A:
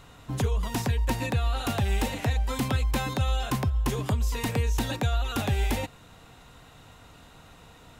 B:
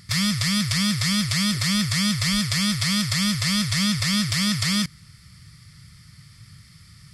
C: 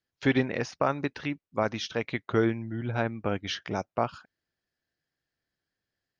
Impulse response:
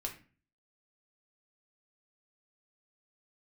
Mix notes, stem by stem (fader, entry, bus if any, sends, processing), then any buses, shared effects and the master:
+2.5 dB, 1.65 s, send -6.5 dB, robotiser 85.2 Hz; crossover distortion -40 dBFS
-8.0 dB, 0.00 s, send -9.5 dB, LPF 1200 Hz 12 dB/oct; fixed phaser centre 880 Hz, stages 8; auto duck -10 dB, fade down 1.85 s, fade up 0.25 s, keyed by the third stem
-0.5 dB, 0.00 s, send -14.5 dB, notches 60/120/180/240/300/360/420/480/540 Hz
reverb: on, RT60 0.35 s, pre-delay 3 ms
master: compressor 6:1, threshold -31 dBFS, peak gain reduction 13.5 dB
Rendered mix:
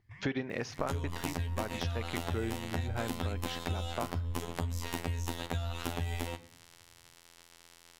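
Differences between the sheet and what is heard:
stem A: entry 1.65 s -> 0.50 s; stem B -8.0 dB -> -17.0 dB; stem C: missing notches 60/120/180/240/300/360/420/480/540 Hz

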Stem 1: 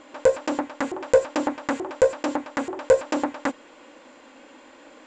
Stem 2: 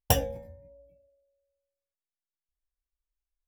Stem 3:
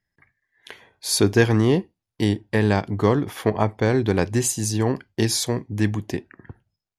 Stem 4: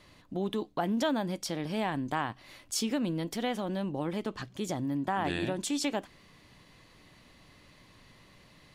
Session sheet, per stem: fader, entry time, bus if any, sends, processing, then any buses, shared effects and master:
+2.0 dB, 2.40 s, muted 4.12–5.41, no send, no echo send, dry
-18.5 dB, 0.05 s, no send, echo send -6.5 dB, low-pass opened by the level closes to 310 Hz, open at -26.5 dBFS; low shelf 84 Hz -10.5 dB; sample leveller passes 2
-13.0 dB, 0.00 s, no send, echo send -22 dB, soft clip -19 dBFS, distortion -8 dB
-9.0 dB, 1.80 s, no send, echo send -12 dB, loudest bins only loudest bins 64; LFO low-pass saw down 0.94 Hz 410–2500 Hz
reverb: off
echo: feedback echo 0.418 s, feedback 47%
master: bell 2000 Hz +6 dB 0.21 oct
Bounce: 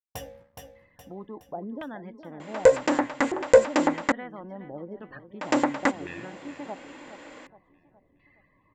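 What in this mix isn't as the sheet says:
stem 3: muted; stem 4: entry 1.80 s -> 0.75 s

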